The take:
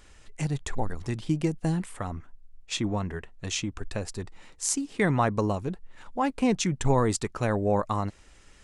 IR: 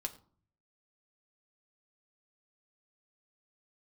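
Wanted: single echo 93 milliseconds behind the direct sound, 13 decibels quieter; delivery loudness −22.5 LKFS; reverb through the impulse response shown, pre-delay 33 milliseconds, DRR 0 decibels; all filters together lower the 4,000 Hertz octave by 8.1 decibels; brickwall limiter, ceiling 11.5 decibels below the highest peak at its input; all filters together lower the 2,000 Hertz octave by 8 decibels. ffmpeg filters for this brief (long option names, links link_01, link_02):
-filter_complex "[0:a]equalizer=frequency=2000:width_type=o:gain=-8,equalizer=frequency=4000:width_type=o:gain=-8.5,alimiter=limit=-24dB:level=0:latency=1,aecho=1:1:93:0.224,asplit=2[link_01][link_02];[1:a]atrim=start_sample=2205,adelay=33[link_03];[link_02][link_03]afir=irnorm=-1:irlink=0,volume=0.5dB[link_04];[link_01][link_04]amix=inputs=2:normalize=0,volume=10dB"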